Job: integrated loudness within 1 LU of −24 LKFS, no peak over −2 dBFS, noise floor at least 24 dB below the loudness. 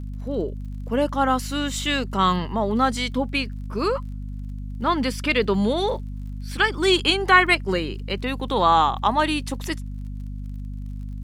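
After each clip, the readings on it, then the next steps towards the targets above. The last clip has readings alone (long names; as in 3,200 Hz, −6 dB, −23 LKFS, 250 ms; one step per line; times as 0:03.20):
crackle rate 40 per second; mains hum 50 Hz; hum harmonics up to 250 Hz; level of the hum −29 dBFS; integrated loudness −22.0 LKFS; sample peak −2.5 dBFS; target loudness −24.0 LKFS
→ click removal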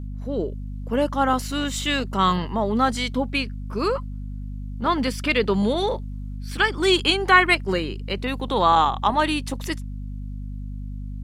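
crackle rate 0.089 per second; mains hum 50 Hz; hum harmonics up to 250 Hz; level of the hum −29 dBFS
→ mains-hum notches 50/100/150/200/250 Hz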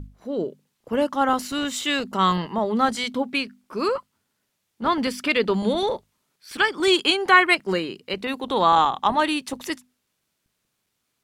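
mains hum none found; integrated loudness −22.5 LKFS; sample peak −3.0 dBFS; target loudness −24.0 LKFS
→ level −1.5 dB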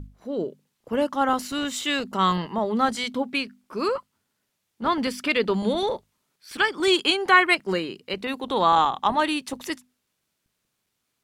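integrated loudness −24.0 LKFS; sample peak −4.5 dBFS; background noise floor −77 dBFS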